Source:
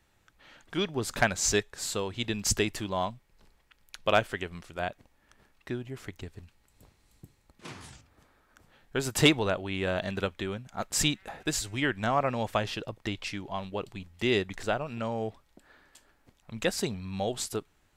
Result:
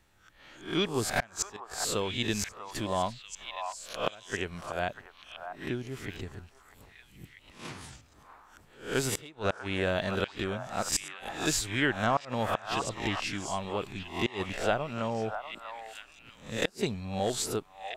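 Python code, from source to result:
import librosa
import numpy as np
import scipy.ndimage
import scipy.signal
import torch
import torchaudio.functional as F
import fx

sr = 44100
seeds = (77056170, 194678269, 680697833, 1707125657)

p1 = fx.spec_swells(x, sr, rise_s=0.4)
p2 = fx.gate_flip(p1, sr, shuts_db=-14.0, range_db=-29)
y = p2 + fx.echo_stepped(p2, sr, ms=642, hz=1000.0, octaves=1.4, feedback_pct=70, wet_db=-4.5, dry=0)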